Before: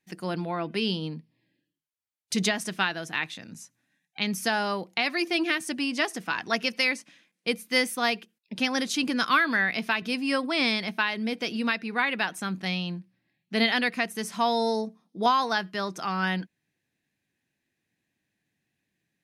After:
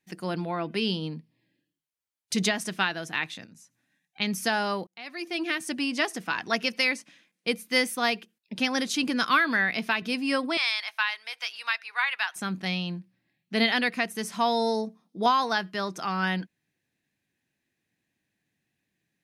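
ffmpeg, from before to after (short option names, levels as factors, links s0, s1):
-filter_complex "[0:a]asettb=1/sr,asplit=3[s0][s1][s2];[s0]atrim=end=3.454[s3];[s1]atrim=start=3.45:end=4.2,asetpts=PTS-STARTPTS,afade=t=in:d=0.004:c=qsin,afade=t=out:st=0.746:d=0.004:c=qsin,acompressor=threshold=0.00158:ratio=2:attack=3.2:release=140:knee=1:detection=peak[s4];[s2]atrim=start=4.196[s5];[s3][s4]acrossfade=d=0.004:c1=hsin:c2=qsin[s6];[s6][s5]acrossfade=d=0.004:c1=qsin:c2=hsin,asettb=1/sr,asplit=3[s7][s8][s9];[s7]atrim=end=10.574[s10];[s8]atrim=start=10.57:end=12.36,asetpts=PTS-STARTPTS,afade=t=in:d=0.004:c=qsin,afade=t=out:st=1.786:d=0.004:c=qsin,highpass=f=920:w=0.5412,highpass=f=920:w=1.3066[s11];[s9]atrim=start=12.356[s12];[s10][s11]acrossfade=d=0.004:c1=hsin:c2=qsin[s13];[s13][s12]acrossfade=d=0.004:c1=qsin:c2=hsin,asplit=2[s14][s15];[s14]atrim=end=4.87,asetpts=PTS-STARTPTS,afade=t=out:st=4.866:d=0.004:c=hsin[s16];[s15]atrim=start=4.87,asetpts=PTS-STARTPTS,afade=t=in:d=0.86[s17];[s16][s17]concat=n=2:v=0:a=1"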